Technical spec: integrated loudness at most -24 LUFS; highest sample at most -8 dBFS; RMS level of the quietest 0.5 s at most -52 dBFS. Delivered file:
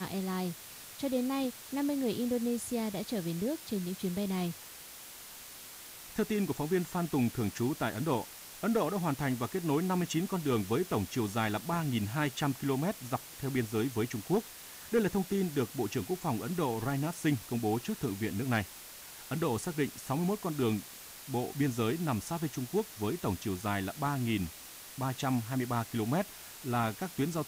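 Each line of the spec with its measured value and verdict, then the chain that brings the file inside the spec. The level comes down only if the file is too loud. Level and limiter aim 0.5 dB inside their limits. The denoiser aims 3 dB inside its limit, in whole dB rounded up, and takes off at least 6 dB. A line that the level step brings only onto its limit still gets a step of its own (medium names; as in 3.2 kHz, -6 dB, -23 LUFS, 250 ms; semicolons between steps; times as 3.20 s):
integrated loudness -33.5 LUFS: pass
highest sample -18.5 dBFS: pass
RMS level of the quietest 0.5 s -49 dBFS: fail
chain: noise reduction 6 dB, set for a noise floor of -49 dBFS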